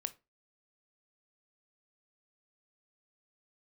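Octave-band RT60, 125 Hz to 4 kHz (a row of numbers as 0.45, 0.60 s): 0.25, 0.30, 0.25, 0.25, 0.25, 0.20 s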